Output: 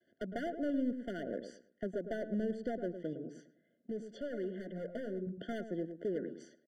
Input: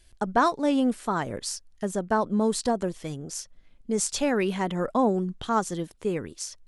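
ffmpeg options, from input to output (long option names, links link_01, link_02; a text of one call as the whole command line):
ffmpeg -i in.wav -filter_complex "[0:a]lowpass=1300,agate=range=-33dB:threshold=-55dB:ratio=3:detection=peak,highpass=frequency=200:width=0.5412,highpass=frequency=200:width=1.3066,acompressor=threshold=-39dB:ratio=2.5,asoftclip=type=hard:threshold=-33.5dB,asettb=1/sr,asplit=3[link_01][link_02][link_03];[link_01]atrim=end=3.134[link_04];[link_02]atrim=start=3.13:end=5.27,asetpts=PTS-STARTPTS,afade=type=in:duration=0.004:curve=qsin,afade=type=out:start_time=2.136:duration=0.004:curve=qsin,flanger=delay=1.4:depth=4.9:regen=-44:speed=1.8:shape=sinusoidal[link_05];[link_03]atrim=start=5.266[link_06];[link_04][link_05]acrossfade=duration=0.004:curve1=hsin:curve2=qsin[link_07];[link_07][link_06]acrossfade=duration=0.004:curve1=qsin:curve2=hsin,asplit=2[link_08][link_09];[link_09]adelay=108,lowpass=frequency=930:poles=1,volume=-8dB,asplit=2[link_10][link_11];[link_11]adelay=108,lowpass=frequency=930:poles=1,volume=0.3,asplit=2[link_12][link_13];[link_13]adelay=108,lowpass=frequency=930:poles=1,volume=0.3,asplit=2[link_14][link_15];[link_15]adelay=108,lowpass=frequency=930:poles=1,volume=0.3[link_16];[link_08][link_10][link_12][link_14][link_16]amix=inputs=5:normalize=0,afftfilt=real='re*eq(mod(floor(b*sr/1024/710),2),0)':imag='im*eq(mod(floor(b*sr/1024/710),2),0)':win_size=1024:overlap=0.75,volume=3dB" out.wav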